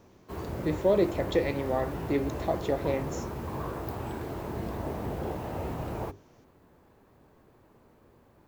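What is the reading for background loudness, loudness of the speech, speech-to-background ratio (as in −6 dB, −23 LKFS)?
−36.5 LKFS, −30.0 LKFS, 6.5 dB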